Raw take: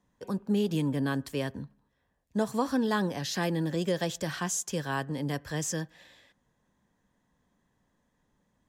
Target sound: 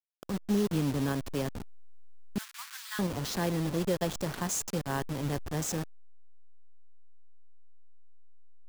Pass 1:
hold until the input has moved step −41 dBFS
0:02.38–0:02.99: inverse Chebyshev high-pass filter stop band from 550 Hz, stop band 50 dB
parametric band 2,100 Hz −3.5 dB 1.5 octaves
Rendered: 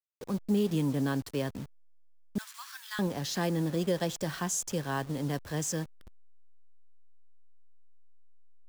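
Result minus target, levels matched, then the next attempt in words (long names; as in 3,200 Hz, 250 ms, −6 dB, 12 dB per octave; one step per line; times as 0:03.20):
hold until the input has moved: distortion −10 dB
hold until the input has moved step −31 dBFS
0:02.38–0:02.99: inverse Chebyshev high-pass filter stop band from 550 Hz, stop band 50 dB
parametric band 2,100 Hz −3.5 dB 1.5 octaves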